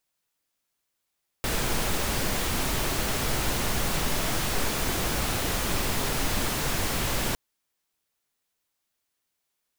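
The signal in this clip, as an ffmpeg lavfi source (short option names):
-f lavfi -i "anoisesrc=c=pink:a=0.243:d=5.91:r=44100:seed=1"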